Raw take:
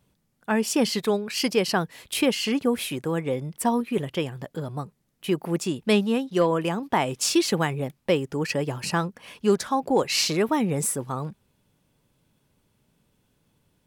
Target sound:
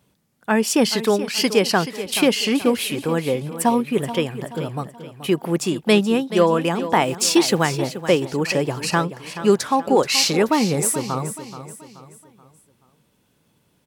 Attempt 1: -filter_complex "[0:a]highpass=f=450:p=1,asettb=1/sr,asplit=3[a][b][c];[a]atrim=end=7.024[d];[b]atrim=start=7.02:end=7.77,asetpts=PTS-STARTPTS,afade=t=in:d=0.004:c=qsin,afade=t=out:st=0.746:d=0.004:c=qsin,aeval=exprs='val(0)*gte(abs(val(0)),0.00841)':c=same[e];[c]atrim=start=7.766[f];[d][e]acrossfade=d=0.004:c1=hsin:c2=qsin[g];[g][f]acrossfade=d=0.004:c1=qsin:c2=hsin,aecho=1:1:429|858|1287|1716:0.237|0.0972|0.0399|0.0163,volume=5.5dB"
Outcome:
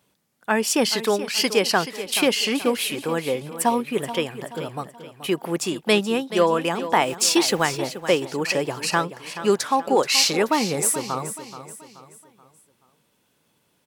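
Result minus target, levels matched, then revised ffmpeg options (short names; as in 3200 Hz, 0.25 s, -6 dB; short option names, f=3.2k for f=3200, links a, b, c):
125 Hz band -5.5 dB
-filter_complex "[0:a]highpass=f=120:p=1,asettb=1/sr,asplit=3[a][b][c];[a]atrim=end=7.024[d];[b]atrim=start=7.02:end=7.77,asetpts=PTS-STARTPTS,afade=t=in:d=0.004:c=qsin,afade=t=out:st=0.746:d=0.004:c=qsin,aeval=exprs='val(0)*gte(abs(val(0)),0.00841)':c=same[e];[c]atrim=start=7.766[f];[d][e]acrossfade=d=0.004:c1=hsin:c2=qsin[g];[g][f]acrossfade=d=0.004:c1=qsin:c2=hsin,aecho=1:1:429|858|1287|1716:0.237|0.0972|0.0399|0.0163,volume=5.5dB"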